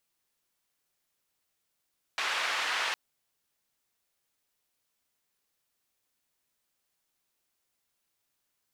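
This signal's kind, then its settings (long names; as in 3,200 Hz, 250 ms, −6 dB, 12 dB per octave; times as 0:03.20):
band-limited noise 940–2,500 Hz, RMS −31 dBFS 0.76 s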